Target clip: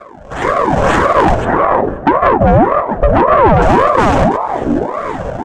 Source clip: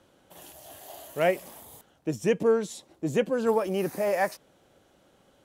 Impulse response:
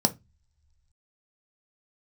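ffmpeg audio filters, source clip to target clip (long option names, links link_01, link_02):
-filter_complex "[0:a]equalizer=frequency=610:width=0.95:gain=-8,acrusher=samples=38:mix=1:aa=0.000001:lfo=1:lforange=60.8:lforate=1.9,asetnsamples=nb_out_samples=441:pad=0,asendcmd='1.45 lowpass f 1400;3.62 lowpass f 3900',lowpass=4100[link_01];[1:a]atrim=start_sample=2205,asetrate=61740,aresample=44100[link_02];[link_01][link_02]afir=irnorm=-1:irlink=0,acompressor=threshold=-30dB:ratio=4,asplit=2[link_03][link_04];[link_04]adelay=1516,volume=-28dB,highshelf=frequency=4000:gain=-34.1[link_05];[link_03][link_05]amix=inputs=2:normalize=0,dynaudnorm=framelen=130:gausssize=9:maxgain=15dB,asoftclip=type=tanh:threshold=-17dB,bandreject=frequency=50:width_type=h:width=6,bandreject=frequency=100:width_type=h:width=6,bandreject=frequency=150:width_type=h:width=6,bandreject=frequency=200:width_type=h:width=6,bandreject=frequency=250:width_type=h:width=6,bandreject=frequency=300:width_type=h:width=6,bandreject=frequency=350:width_type=h:width=6,bandreject=frequency=400:width_type=h:width=6,alimiter=level_in=19dB:limit=-1dB:release=50:level=0:latency=1,aeval=exprs='val(0)*sin(2*PI*580*n/s+580*0.55/1.8*sin(2*PI*1.8*n/s))':channel_layout=same"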